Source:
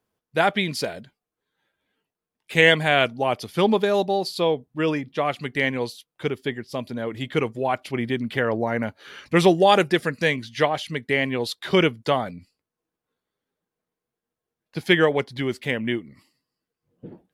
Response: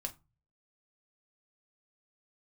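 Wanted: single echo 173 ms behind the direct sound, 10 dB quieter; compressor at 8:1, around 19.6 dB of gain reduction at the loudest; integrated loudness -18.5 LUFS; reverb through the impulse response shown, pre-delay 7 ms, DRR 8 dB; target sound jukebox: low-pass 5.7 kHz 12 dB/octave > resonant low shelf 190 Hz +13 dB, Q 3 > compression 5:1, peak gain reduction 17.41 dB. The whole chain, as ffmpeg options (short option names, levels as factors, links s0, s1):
-filter_complex "[0:a]acompressor=threshold=0.0251:ratio=8,aecho=1:1:173:0.316,asplit=2[s0][s1];[1:a]atrim=start_sample=2205,adelay=7[s2];[s1][s2]afir=irnorm=-1:irlink=0,volume=0.447[s3];[s0][s3]amix=inputs=2:normalize=0,lowpass=5700,lowshelf=f=190:t=q:w=3:g=13,acompressor=threshold=0.02:ratio=5,volume=9.44"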